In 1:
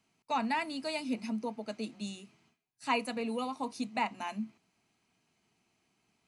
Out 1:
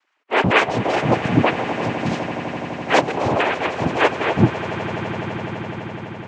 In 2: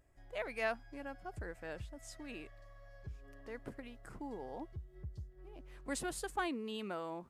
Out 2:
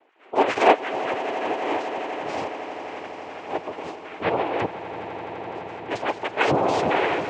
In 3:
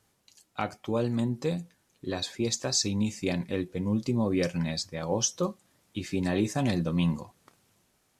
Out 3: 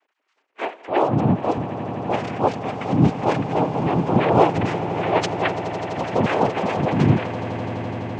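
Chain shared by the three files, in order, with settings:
sine-wave speech; transient shaper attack -11 dB, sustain +2 dB; noise vocoder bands 4; air absorption 140 m; swelling echo 84 ms, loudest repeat 8, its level -17 dB; normalise peaks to -1.5 dBFS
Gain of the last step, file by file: +20.5, +21.0, +11.0 dB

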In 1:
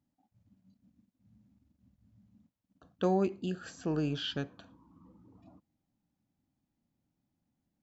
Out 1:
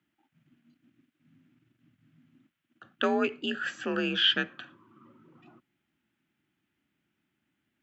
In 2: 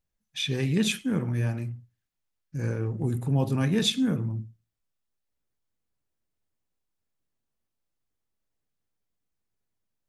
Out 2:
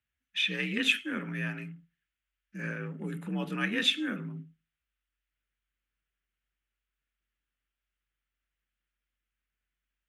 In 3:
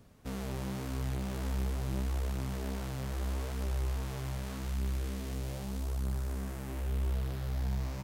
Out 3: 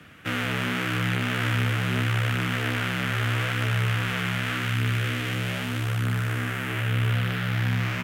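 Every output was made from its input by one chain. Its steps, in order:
band shelf 2000 Hz +15.5 dB; frequency shift +48 Hz; normalise peaks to -12 dBFS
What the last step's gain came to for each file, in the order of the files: +0.5, -9.5, +7.0 dB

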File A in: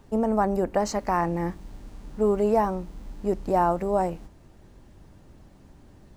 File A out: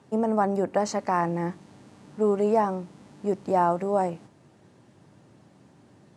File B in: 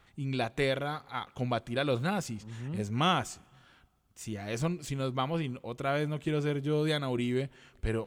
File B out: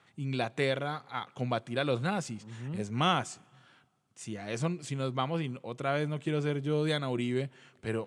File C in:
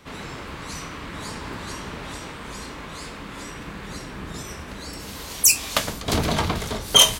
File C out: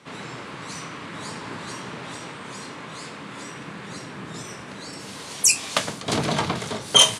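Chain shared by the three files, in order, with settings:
elliptic band-pass 120–9600 Hz, stop band 50 dB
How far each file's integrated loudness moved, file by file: -0.5, -0.5, -2.0 LU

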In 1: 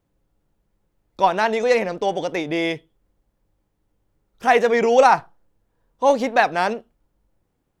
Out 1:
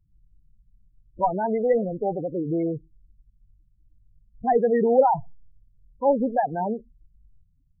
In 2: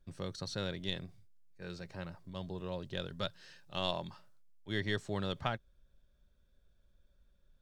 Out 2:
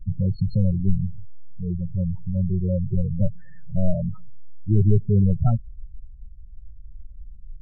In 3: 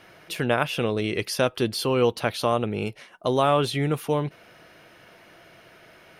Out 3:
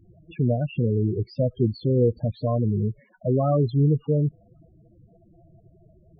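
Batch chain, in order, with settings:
RIAA curve playback; loudest bins only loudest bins 8; match loudness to -24 LUFS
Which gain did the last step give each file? -5.5, +10.5, -3.0 dB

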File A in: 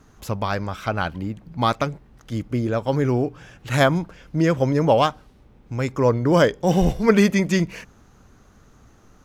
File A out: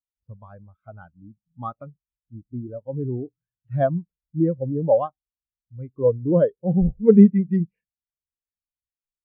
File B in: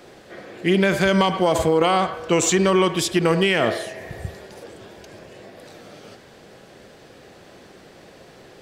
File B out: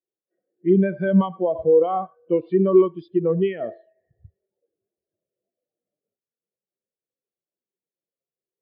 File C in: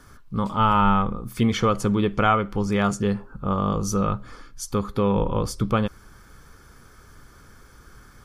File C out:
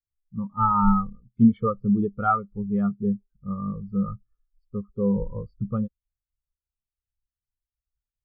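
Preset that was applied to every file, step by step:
downsampling 11025 Hz; spectral expander 2.5:1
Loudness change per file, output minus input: +0.5, -1.0, -2.0 LU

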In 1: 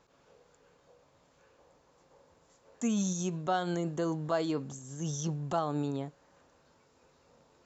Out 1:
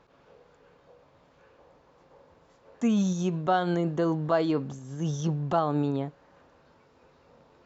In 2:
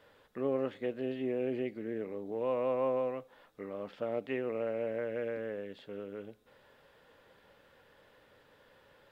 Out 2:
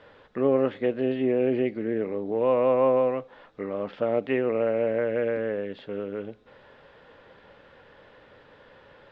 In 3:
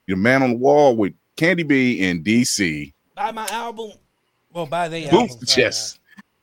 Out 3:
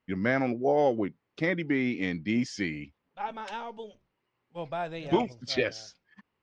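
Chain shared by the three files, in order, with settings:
Gaussian blur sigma 1.8 samples; normalise peaks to -12 dBFS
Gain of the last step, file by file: +6.0, +10.0, -11.0 dB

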